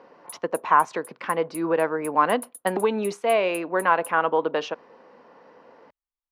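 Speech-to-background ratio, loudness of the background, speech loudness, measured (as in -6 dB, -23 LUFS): 18.0 dB, -42.0 LUFS, -24.0 LUFS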